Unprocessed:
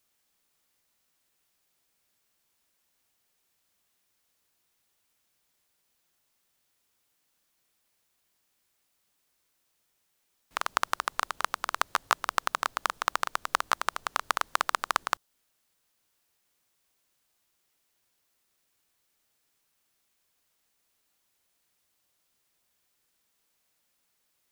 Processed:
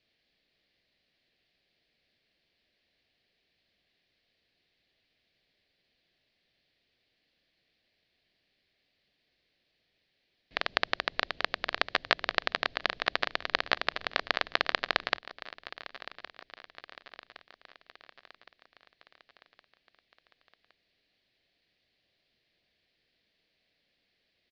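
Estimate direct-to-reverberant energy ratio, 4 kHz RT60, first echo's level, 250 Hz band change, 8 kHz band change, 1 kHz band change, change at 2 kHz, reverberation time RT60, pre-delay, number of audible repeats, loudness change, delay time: none, none, -16.0 dB, +5.0 dB, -17.0 dB, -6.0 dB, +2.5 dB, none, none, 4, -0.5 dB, 1.115 s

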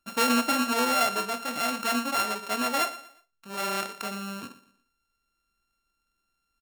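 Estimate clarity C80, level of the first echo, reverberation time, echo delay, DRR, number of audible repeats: none, -17.0 dB, none, 0.119 s, none, 2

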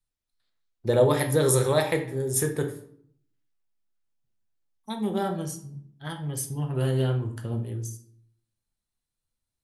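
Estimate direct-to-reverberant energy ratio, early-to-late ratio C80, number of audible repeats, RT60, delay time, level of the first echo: 3.5 dB, 14.0 dB, none, 0.65 s, none, none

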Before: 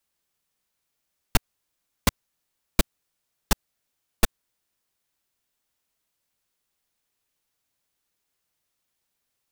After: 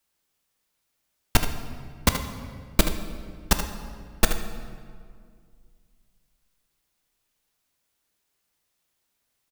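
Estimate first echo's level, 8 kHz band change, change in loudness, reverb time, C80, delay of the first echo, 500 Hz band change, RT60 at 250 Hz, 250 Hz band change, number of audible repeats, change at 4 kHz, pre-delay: -10.0 dB, +3.0 dB, +1.5 dB, 2.1 s, 10.0 dB, 77 ms, +3.5 dB, 2.5 s, +3.5 dB, 1, +3.0 dB, 3 ms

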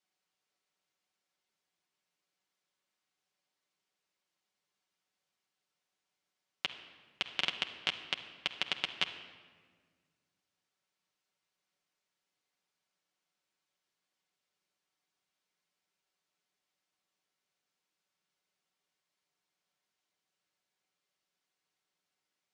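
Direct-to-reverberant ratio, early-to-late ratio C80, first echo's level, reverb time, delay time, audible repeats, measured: 2.0 dB, 11.5 dB, none, 1.6 s, none, none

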